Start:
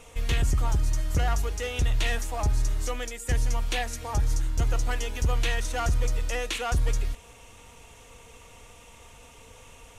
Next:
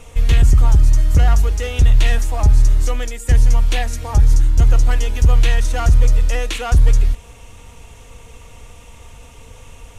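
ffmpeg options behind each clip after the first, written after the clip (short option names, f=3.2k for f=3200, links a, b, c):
-af "lowshelf=f=170:g=9.5,volume=5dB"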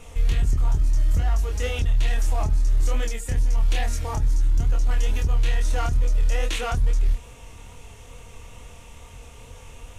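-af "alimiter=limit=-13.5dB:level=0:latency=1:release=16,flanger=delay=22.5:depth=5.9:speed=2.3"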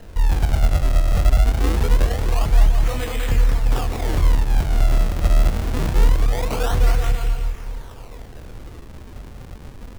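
-filter_complex "[0:a]aecho=1:1:200|370|514.5|637.3|741.7:0.631|0.398|0.251|0.158|0.1,acrusher=samples=38:mix=1:aa=0.000001:lfo=1:lforange=60.8:lforate=0.24,acrossover=split=440[a][b];[b]acompressor=threshold=-26dB:ratio=6[c];[a][c]amix=inputs=2:normalize=0,volume=3.5dB"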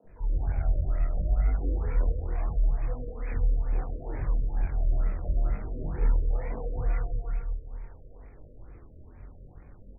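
-filter_complex "[0:a]flanger=delay=19.5:depth=4.7:speed=0.72,acrossover=split=220|910[a][b][c];[a]adelay=40[d];[c]adelay=70[e];[d][b][e]amix=inputs=3:normalize=0,afftfilt=real='re*lt(b*sr/1024,620*pow(2600/620,0.5+0.5*sin(2*PI*2.2*pts/sr)))':imag='im*lt(b*sr/1024,620*pow(2600/620,0.5+0.5*sin(2*PI*2.2*pts/sr)))':win_size=1024:overlap=0.75,volume=-8dB"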